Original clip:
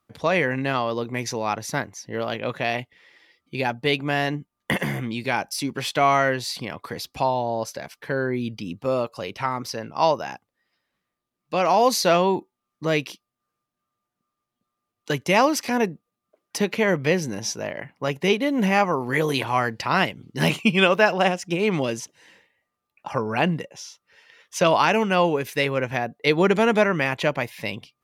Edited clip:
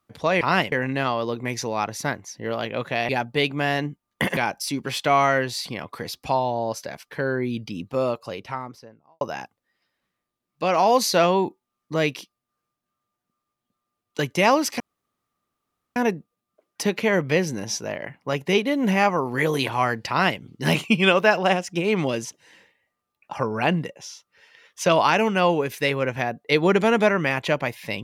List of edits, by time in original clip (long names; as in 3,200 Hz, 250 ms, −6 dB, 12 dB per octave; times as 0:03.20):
0:02.78–0:03.58: remove
0:04.86–0:05.28: remove
0:09.00–0:10.12: fade out and dull
0:15.71: splice in room tone 1.16 s
0:19.84–0:20.15: duplicate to 0:00.41